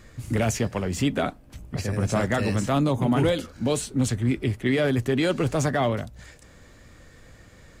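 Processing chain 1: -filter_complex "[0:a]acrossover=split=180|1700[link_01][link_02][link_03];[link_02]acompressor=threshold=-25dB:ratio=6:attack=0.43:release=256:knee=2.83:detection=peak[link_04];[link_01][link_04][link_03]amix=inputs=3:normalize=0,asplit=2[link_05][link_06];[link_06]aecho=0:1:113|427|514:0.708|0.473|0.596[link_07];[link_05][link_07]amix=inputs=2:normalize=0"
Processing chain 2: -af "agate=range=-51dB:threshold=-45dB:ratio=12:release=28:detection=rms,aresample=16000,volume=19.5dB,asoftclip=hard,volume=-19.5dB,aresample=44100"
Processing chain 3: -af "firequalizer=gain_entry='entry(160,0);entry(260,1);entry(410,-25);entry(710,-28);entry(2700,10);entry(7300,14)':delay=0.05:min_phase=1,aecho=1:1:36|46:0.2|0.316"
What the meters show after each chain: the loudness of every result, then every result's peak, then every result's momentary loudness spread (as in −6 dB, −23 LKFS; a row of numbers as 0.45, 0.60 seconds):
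−25.0, −26.5, −22.5 LKFS; −11.0, −17.5, −5.5 dBFS; 6, 6, 13 LU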